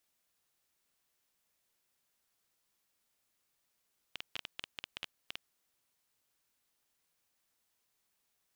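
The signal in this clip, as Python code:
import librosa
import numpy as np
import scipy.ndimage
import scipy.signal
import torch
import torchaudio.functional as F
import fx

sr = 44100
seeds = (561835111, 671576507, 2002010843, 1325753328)

y = fx.geiger_clicks(sr, seeds[0], length_s=1.58, per_s=9.6, level_db=-21.5)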